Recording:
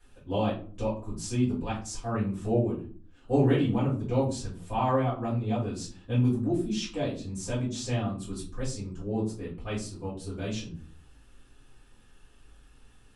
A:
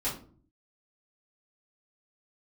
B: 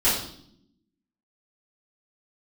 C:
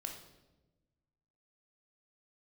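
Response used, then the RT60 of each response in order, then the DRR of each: A; 0.45, 0.65, 1.1 seconds; −10.0, −14.0, 2.5 decibels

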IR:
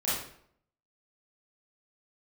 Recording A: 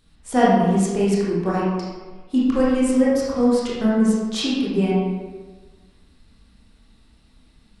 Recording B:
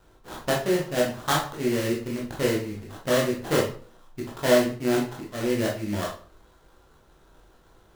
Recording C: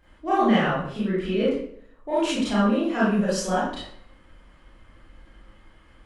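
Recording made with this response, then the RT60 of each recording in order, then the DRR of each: C; 1.4, 0.45, 0.65 seconds; −7.0, −3.0, −10.0 decibels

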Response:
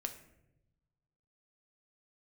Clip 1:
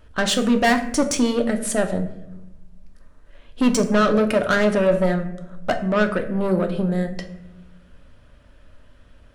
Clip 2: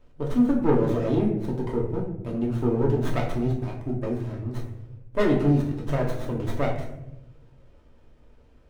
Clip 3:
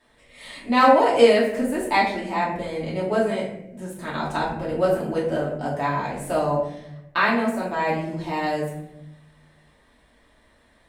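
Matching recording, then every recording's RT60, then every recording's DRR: 1; 0.90, 0.90, 0.90 seconds; 5.5, −3.0, −7.0 decibels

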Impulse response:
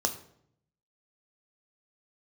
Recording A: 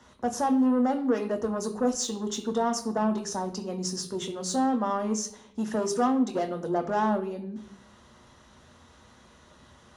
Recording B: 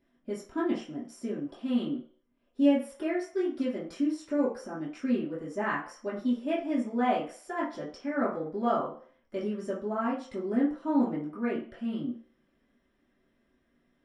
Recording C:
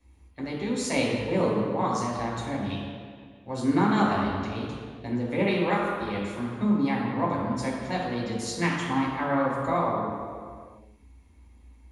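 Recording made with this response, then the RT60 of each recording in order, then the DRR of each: A; 0.70, 0.45, 1.9 seconds; 5.5, −10.0, −5.5 decibels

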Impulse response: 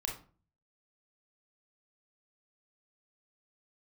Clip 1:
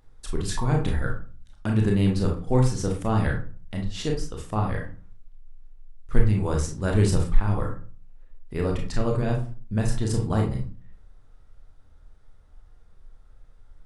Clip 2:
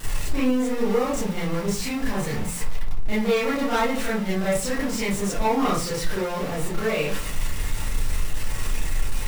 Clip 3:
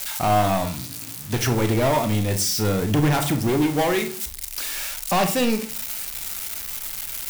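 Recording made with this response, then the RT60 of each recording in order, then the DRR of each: 1; 0.40, 0.40, 0.40 seconds; 0.0, −9.5, 7.0 decibels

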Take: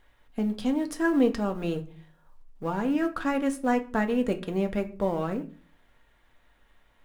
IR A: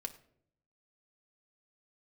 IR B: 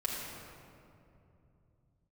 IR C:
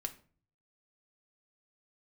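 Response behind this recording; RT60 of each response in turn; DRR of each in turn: C; 0.65, 2.7, 0.45 seconds; 5.5, −4.0, 5.5 decibels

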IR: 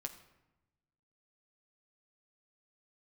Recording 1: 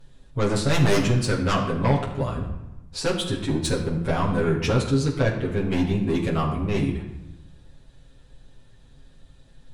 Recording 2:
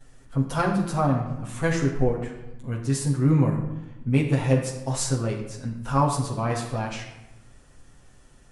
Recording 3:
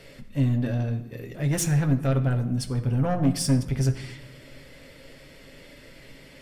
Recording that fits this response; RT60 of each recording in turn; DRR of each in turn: 3; 0.95, 0.95, 1.0 seconds; −5.5, −12.0, 4.5 decibels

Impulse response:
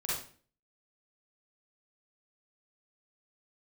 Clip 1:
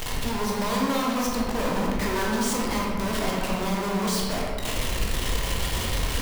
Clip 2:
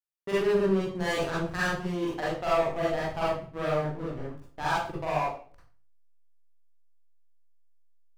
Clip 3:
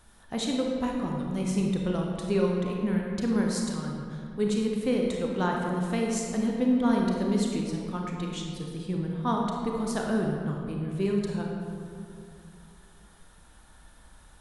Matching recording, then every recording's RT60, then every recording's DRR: 2; 1.9, 0.45, 2.4 seconds; −3.5, −8.0, −0.5 decibels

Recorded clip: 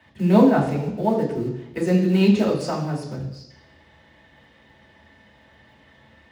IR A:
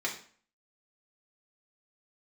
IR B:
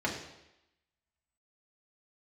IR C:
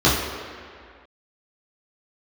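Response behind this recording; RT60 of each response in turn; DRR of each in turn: B; 0.45, 0.90, 2.1 seconds; −2.5, −3.0, −9.0 decibels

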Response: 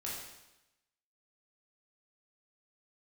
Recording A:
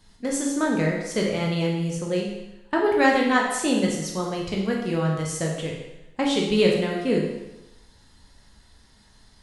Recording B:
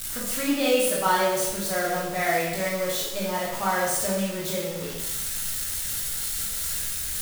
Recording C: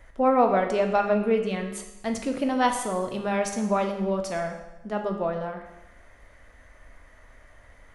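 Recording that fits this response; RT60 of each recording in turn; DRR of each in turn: B; 0.95, 0.95, 0.95 seconds; −1.5, −6.0, 4.0 decibels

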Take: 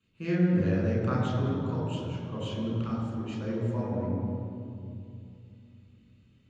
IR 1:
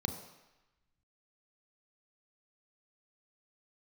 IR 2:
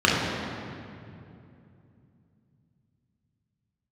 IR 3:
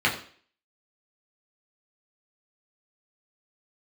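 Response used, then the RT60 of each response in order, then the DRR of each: 2; 1.0, 2.7, 0.50 seconds; 6.0, −5.0, −4.5 decibels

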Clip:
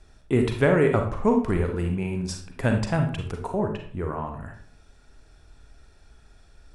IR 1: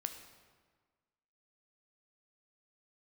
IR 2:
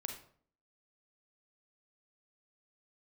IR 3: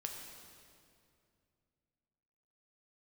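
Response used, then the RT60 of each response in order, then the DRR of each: 2; 1.5, 0.55, 2.4 seconds; 6.5, 3.5, 1.5 decibels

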